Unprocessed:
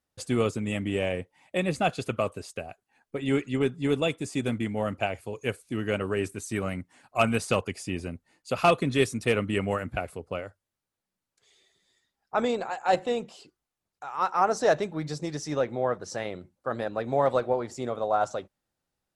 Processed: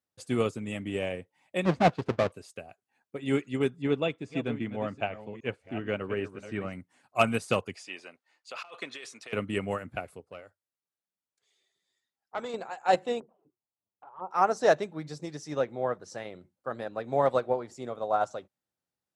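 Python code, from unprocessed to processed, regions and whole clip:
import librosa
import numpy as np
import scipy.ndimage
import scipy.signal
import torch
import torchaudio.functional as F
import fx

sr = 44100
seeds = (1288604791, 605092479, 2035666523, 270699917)

y = fx.chain(x, sr, fx.halfwave_hold(),
    fx.lowpass(hz=4900.0, slope=12),
    fx.high_shelf(hz=2500.0, db=-11.5), at=(1.65, 2.32))
y = fx.chain(y, sr, fx.reverse_delay(ms=396, wet_db=-10),
    fx.lowpass(hz=3500.0, slope=12), at=(3.82, 6.73))
y = fx.chain(y, sr, fx.bandpass_edges(low_hz=770.0, high_hz=5600.0),
    fx.over_compress(threshold_db=-35.0, ratio=-1.0), at=(7.75, 9.33))
y = fx.chain(y, sr, fx.low_shelf(hz=300.0, db=-6.5),
    fx.tube_stage(drive_db=19.0, bias=0.55), at=(10.2, 12.54))
y = fx.chain(y, sr, fx.lowpass(hz=1100.0, slope=24),
    fx.env_flanger(rest_ms=10.5, full_db=-29.5), at=(13.2, 14.31))
y = scipy.signal.sosfilt(scipy.signal.butter(2, 89.0, 'highpass', fs=sr, output='sos'), y)
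y = fx.upward_expand(y, sr, threshold_db=-35.0, expansion=1.5)
y = F.gain(torch.from_numpy(y), 1.0).numpy()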